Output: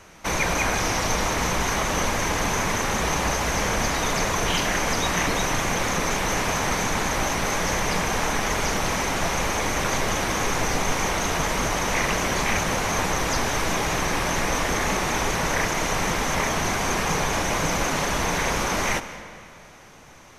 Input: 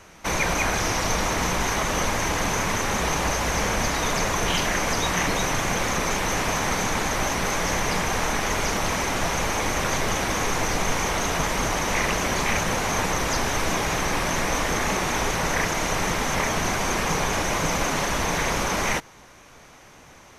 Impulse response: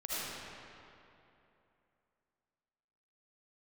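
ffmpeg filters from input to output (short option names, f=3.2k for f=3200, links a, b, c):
-filter_complex "[0:a]asplit=2[a][b];[1:a]atrim=start_sample=2205,asetrate=57330,aresample=44100,adelay=70[c];[b][c]afir=irnorm=-1:irlink=0,volume=-14.5dB[d];[a][d]amix=inputs=2:normalize=0"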